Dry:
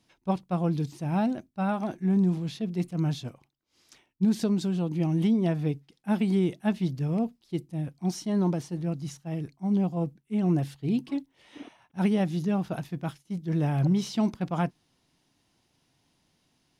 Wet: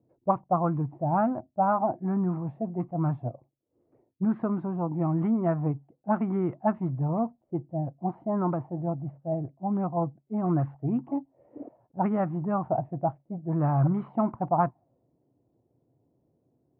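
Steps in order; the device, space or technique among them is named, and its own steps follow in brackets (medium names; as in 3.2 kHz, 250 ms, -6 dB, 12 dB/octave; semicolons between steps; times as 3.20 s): envelope filter bass rig (touch-sensitive low-pass 450–1300 Hz up, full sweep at -21.5 dBFS; cabinet simulation 64–2200 Hz, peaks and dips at 120 Hz +7 dB, 190 Hz -5 dB, 440 Hz -6 dB, 660 Hz +4 dB, 1.6 kHz -4 dB)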